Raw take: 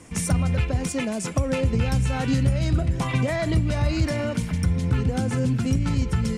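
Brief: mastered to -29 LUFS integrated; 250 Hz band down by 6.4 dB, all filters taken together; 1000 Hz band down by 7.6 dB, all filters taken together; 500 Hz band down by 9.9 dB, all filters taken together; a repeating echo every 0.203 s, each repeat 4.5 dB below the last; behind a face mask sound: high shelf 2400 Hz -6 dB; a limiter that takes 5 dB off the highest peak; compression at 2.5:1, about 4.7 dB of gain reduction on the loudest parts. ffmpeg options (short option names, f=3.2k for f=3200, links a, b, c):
-af "equalizer=f=250:t=o:g=-7,equalizer=f=500:t=o:g=-8.5,equalizer=f=1k:t=o:g=-5.5,acompressor=threshold=-25dB:ratio=2.5,alimiter=limit=-21.5dB:level=0:latency=1,highshelf=f=2.4k:g=-6,aecho=1:1:203|406|609|812|1015|1218|1421|1624|1827:0.596|0.357|0.214|0.129|0.0772|0.0463|0.0278|0.0167|0.01,volume=0.5dB"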